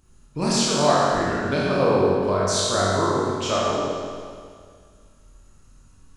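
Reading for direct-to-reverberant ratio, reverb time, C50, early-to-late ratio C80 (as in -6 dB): -7.0 dB, 2.0 s, -4.0 dB, -1.5 dB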